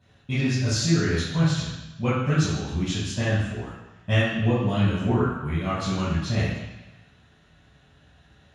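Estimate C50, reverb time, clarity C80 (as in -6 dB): -0.5 dB, 1.1 s, 2.5 dB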